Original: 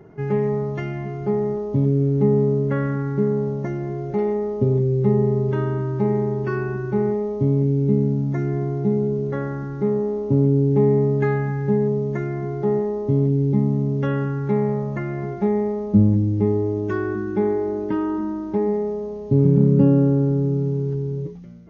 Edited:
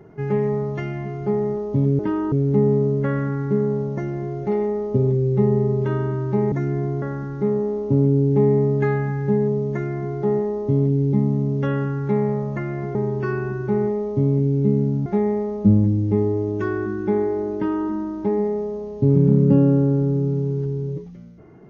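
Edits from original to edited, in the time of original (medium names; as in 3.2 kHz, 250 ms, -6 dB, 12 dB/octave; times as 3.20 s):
6.19–8.30 s: move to 15.35 s
8.80–9.42 s: delete
17.84–18.17 s: copy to 1.99 s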